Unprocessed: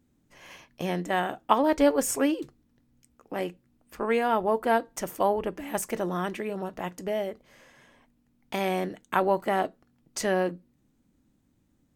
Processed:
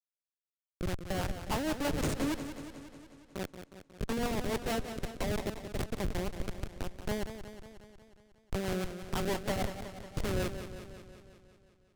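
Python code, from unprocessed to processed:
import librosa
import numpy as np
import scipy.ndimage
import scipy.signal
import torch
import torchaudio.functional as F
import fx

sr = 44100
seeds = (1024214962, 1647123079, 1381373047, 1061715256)

y = fx.schmitt(x, sr, flips_db=-24.5)
y = fx.rotary(y, sr, hz=6.3)
y = fx.echo_warbled(y, sr, ms=181, feedback_pct=64, rate_hz=2.8, cents=74, wet_db=-10.0)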